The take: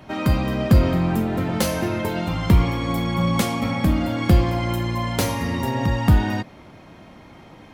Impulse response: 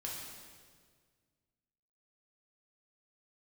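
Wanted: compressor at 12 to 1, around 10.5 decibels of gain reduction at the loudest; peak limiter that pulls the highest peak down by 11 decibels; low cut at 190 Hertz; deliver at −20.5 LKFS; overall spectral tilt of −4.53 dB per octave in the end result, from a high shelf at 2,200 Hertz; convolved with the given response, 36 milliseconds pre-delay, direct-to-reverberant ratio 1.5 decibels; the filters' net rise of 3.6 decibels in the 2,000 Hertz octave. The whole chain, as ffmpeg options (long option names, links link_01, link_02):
-filter_complex "[0:a]highpass=190,equalizer=frequency=2000:width_type=o:gain=6,highshelf=frequency=2200:gain=-3.5,acompressor=threshold=-25dB:ratio=12,alimiter=limit=-22.5dB:level=0:latency=1,asplit=2[link_01][link_02];[1:a]atrim=start_sample=2205,adelay=36[link_03];[link_02][link_03]afir=irnorm=-1:irlink=0,volume=-1.5dB[link_04];[link_01][link_04]amix=inputs=2:normalize=0,volume=8.5dB"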